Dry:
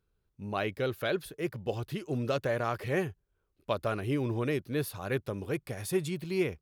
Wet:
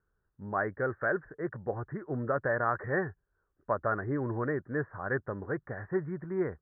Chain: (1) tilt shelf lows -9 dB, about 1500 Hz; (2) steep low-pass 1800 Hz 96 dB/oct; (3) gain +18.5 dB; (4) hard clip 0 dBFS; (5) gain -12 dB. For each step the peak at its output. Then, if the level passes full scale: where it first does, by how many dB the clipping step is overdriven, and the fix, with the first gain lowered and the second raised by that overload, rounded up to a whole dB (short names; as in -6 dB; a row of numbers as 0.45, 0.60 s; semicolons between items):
-16.0, -22.0, -3.5, -3.5, -15.5 dBFS; no overload